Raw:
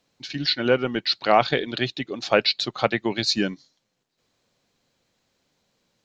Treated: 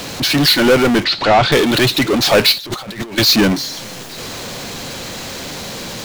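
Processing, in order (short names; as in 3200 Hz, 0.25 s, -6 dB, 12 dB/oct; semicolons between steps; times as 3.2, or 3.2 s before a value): power-law curve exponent 0.35; 1.04–1.52 air absorption 140 m; 2.58–3.18 negative-ratio compressor -28 dBFS, ratio -1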